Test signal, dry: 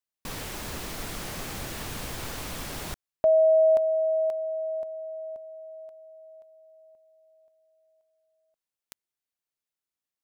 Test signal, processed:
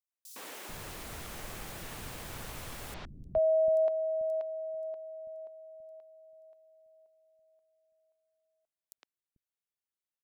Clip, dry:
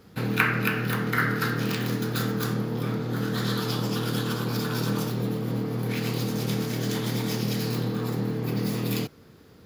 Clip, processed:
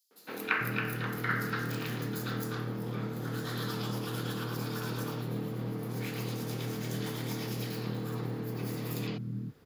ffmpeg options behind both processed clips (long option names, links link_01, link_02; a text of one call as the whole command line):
ffmpeg -i in.wav -filter_complex "[0:a]acrossover=split=260|4900[link_01][link_02][link_03];[link_02]adelay=110[link_04];[link_01]adelay=440[link_05];[link_05][link_04][link_03]amix=inputs=3:normalize=0,volume=-6.5dB" out.wav